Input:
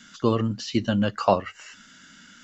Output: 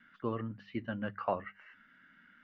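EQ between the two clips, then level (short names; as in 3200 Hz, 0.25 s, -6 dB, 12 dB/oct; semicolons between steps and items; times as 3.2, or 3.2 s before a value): ladder low-pass 2300 Hz, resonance 45%; notches 50/100/150/200 Hz; -5.0 dB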